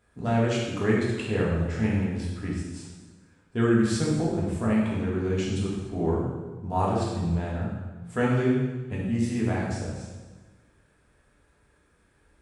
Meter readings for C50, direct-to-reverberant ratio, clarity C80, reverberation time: 0.5 dB, -5.5 dB, 3.0 dB, 1.3 s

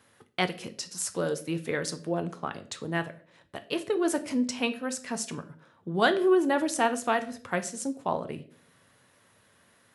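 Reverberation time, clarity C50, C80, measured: no single decay rate, 15.0 dB, 19.5 dB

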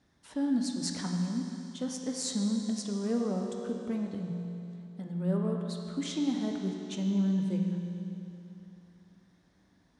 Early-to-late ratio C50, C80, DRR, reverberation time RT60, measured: 3.0 dB, 3.5 dB, 1.5 dB, 3.0 s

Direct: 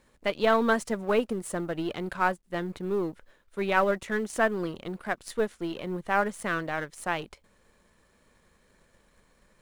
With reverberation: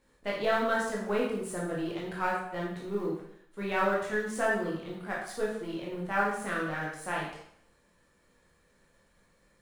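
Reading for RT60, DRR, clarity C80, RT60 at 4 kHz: 0.70 s, -5.0 dB, 6.0 dB, 0.65 s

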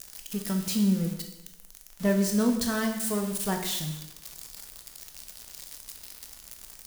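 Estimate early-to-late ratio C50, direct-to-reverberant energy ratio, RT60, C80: 7.0 dB, 3.5 dB, 0.90 s, 9.5 dB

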